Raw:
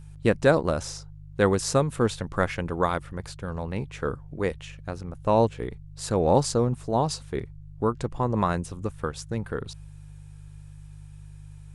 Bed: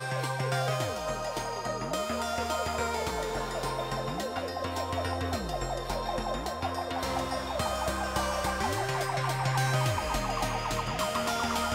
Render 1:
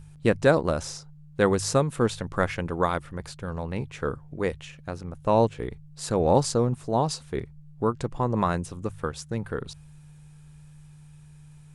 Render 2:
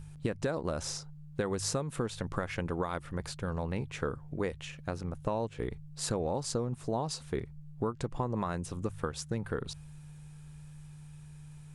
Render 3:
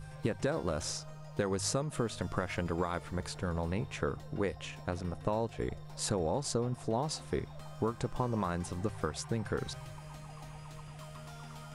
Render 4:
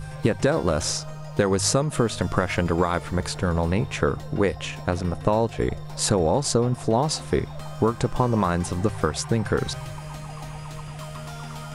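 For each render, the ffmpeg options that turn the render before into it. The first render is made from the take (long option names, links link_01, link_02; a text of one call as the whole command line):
ffmpeg -i in.wav -af "bandreject=frequency=50:width_type=h:width=4,bandreject=frequency=100:width_type=h:width=4" out.wav
ffmpeg -i in.wav -af "alimiter=limit=-13.5dB:level=0:latency=1:release=205,acompressor=threshold=-29dB:ratio=6" out.wav
ffmpeg -i in.wav -i bed.wav -filter_complex "[1:a]volume=-21.5dB[link_01];[0:a][link_01]amix=inputs=2:normalize=0" out.wav
ffmpeg -i in.wav -af "volume=11.5dB" out.wav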